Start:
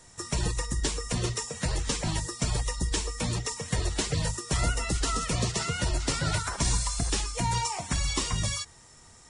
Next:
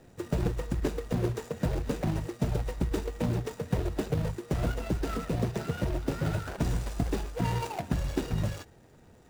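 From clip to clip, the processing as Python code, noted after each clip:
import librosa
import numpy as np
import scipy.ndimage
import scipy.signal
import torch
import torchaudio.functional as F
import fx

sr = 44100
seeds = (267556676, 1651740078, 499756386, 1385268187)

y = scipy.ndimage.median_filter(x, 41, mode='constant')
y = fx.low_shelf(y, sr, hz=120.0, db=-11.5)
y = fx.rider(y, sr, range_db=10, speed_s=0.5)
y = F.gain(torch.from_numpy(y), 6.5).numpy()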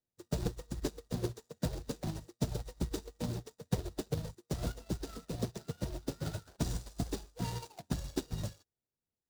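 y = fx.high_shelf_res(x, sr, hz=3200.0, db=7.5, q=1.5)
y = fx.upward_expand(y, sr, threshold_db=-49.0, expansion=2.5)
y = F.gain(torch.from_numpy(y), -2.0).numpy()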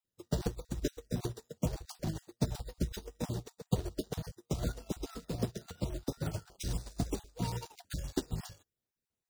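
y = fx.spec_dropout(x, sr, seeds[0], share_pct=24)
y = F.gain(torch.from_numpy(y), 2.0).numpy()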